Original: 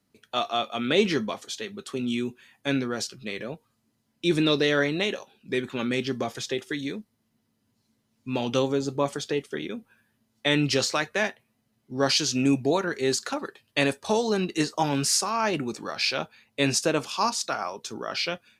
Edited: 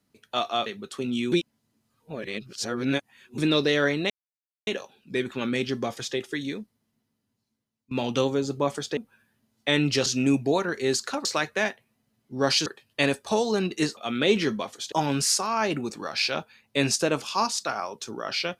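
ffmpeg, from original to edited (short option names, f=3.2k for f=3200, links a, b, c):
-filter_complex "[0:a]asplit=12[a][b][c][d][e][f][g][h][i][j][k][l];[a]atrim=end=0.662[m];[b]atrim=start=1.608:end=2.272[n];[c]atrim=start=2.268:end=4.332,asetpts=PTS-STARTPTS,areverse[o];[d]atrim=start=4.328:end=5.05,asetpts=PTS-STARTPTS,afade=t=out:st=0.718:d=0.004:c=hsin,apad=pad_dur=0.57[p];[e]atrim=start=5.05:end=8.29,asetpts=PTS-STARTPTS,afade=t=in:d=0.004:c=hsin,afade=t=out:st=1.81:d=1.43:silence=0.0841395[q];[f]atrim=start=8.29:end=9.352,asetpts=PTS-STARTPTS,afade=t=in:d=0.004:c=hsin:silence=0.0841395[r];[g]atrim=start=9.748:end=10.842[s];[h]atrim=start=12.248:end=13.442[t];[i]atrim=start=10.838:end=12.252[u];[j]atrim=start=13.438:end=14.752[v];[k]atrim=start=0.658:end=1.612[w];[l]atrim=start=14.748[x];[m][n]acrossfade=d=0.004:c1=hsin:c2=hsin[y];[y][o]acrossfade=d=0.004:c1=hsin:c2=hsin[z];[p][q][r]concat=n=3:v=0:a=1[aa];[z][aa]acrossfade=d=0.004:c1=hsin:c2=hsin[ab];[ab][s]acrossfade=d=0.004:c1=hsin:c2=hsin[ac];[ac][t]acrossfade=d=0.004:c1=hsin:c2=hsin[ad];[ad][u]acrossfade=d=0.004:c1=hsin:c2=hsin[ae];[ae][v]acrossfade=d=0.004:c1=hsin:c2=hsin[af];[af][w]acrossfade=d=0.004:c1=hsin:c2=hsin[ag];[ag][x]acrossfade=d=0.004:c1=hsin:c2=hsin"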